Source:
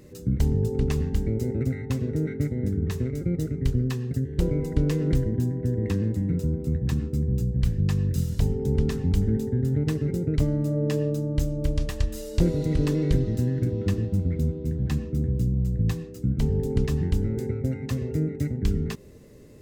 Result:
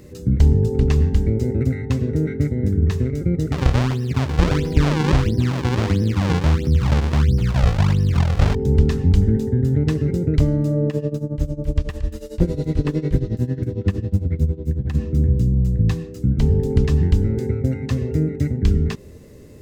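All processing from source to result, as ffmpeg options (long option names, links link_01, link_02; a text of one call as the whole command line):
ffmpeg -i in.wav -filter_complex "[0:a]asettb=1/sr,asplit=3[link_01][link_02][link_03];[link_01]atrim=end=3.524[link_04];[link_02]atrim=start=3.52:end=8.55,asetpts=PTS-STARTPTS,afade=type=in:duration=0.004:curve=qsin,afade=type=out:start_time=5.026:duration=0.004:curve=qsin,acrusher=samples=40:mix=1:aa=0.000001:lfo=1:lforange=64:lforate=1.5,acompressor=mode=upward:threshold=-24dB:ratio=2.5:attack=3.2:release=140:knee=2.83:detection=peak[link_05];[link_03]atrim=start=8.546[link_06];[link_04][link_05]acrossfade=duration=0.004:curve1=hsin:curve2=qsin[link_07];[link_07][link_06]acrossfade=duration=0.004:curve1=qsin:curve2=hsin,asettb=1/sr,asplit=3[link_08][link_09][link_10];[link_08]atrim=end=10.884[link_11];[link_09]atrim=start=10.88:end=14.95,asetpts=PTS-STARTPTS,afade=type=in:duration=0.004:curve=qsin,afade=type=out:start_time=4.066:duration=0.004:curve=qsin,acrossover=split=3100[link_12][link_13];[link_13]acompressor=threshold=-47dB:ratio=4:attack=1:release=60[link_14];[link_12][link_14]amix=inputs=2:normalize=0,tremolo=f=11:d=0.85[link_15];[link_10]atrim=start=14.946[link_16];[link_11][link_15]acrossfade=duration=0.004:curve1=hsin:curve2=qsin[link_17];[link_17][link_16]acrossfade=duration=0.004:curve1=qsin:curve2=hsin,acrossover=split=6900[link_18][link_19];[link_19]acompressor=threshold=-56dB:ratio=4:attack=1:release=60[link_20];[link_18][link_20]amix=inputs=2:normalize=0,equalizer=frequency=78:width_type=o:width=0.36:gain=7,volume=5.5dB" out.wav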